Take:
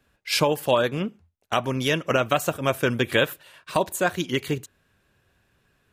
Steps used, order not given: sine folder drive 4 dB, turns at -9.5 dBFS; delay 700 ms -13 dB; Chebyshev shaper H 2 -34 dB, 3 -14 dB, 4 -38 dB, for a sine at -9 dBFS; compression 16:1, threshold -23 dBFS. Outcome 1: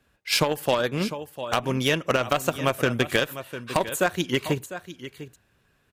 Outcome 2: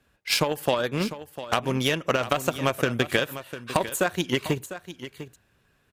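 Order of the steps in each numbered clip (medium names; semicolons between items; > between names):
delay > Chebyshev shaper > compression > sine folder; compression > sine folder > Chebyshev shaper > delay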